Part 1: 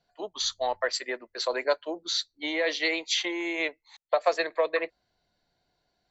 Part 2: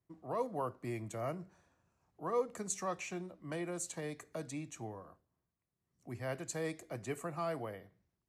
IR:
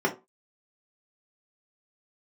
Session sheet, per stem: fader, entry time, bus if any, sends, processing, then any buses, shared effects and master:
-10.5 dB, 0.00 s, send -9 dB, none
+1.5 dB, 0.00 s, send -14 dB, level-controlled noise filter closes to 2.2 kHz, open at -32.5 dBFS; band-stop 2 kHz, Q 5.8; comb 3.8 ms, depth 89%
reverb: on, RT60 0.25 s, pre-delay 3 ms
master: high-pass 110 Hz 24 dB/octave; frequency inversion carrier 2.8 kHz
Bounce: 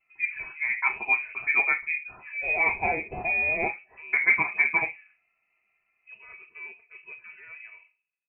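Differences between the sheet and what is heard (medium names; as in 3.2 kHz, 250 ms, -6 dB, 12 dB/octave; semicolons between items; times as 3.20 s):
stem 1 -10.5 dB -> -1.5 dB; stem 2 +1.5 dB -> -8.0 dB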